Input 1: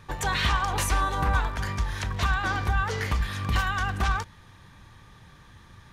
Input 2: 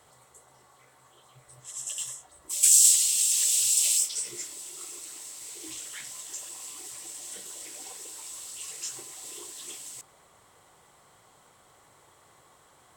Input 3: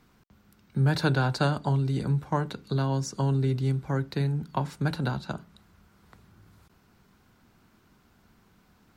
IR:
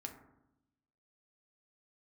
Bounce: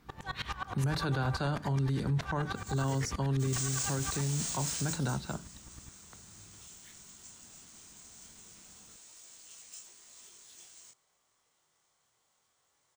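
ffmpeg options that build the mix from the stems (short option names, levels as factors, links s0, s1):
-filter_complex "[0:a]highpass=73,aeval=exprs='val(0)+0.00891*(sin(2*PI*60*n/s)+sin(2*PI*2*60*n/s)/2+sin(2*PI*3*60*n/s)/3+sin(2*PI*4*60*n/s)/4+sin(2*PI*5*60*n/s)/5)':c=same,aeval=exprs='val(0)*pow(10,-35*if(lt(mod(-9.5*n/s,1),2*abs(-9.5)/1000),1-mod(-9.5*n/s,1)/(2*abs(-9.5)/1000),(mod(-9.5*n/s,1)-2*abs(-9.5)/1000)/(1-2*abs(-9.5)/1000))/20)':c=same,volume=0.596,asplit=2[s0][s1];[s1]volume=0.447[s2];[1:a]highshelf=f=2000:g=11,acrusher=samples=3:mix=1:aa=0.000001,flanger=delay=19:depth=7.2:speed=0.23,adelay=900,volume=0.106[s3];[2:a]volume=0.794[s4];[3:a]atrim=start_sample=2205[s5];[s2][s5]afir=irnorm=-1:irlink=0[s6];[s0][s3][s4][s6]amix=inputs=4:normalize=0,alimiter=limit=0.0631:level=0:latency=1:release=19"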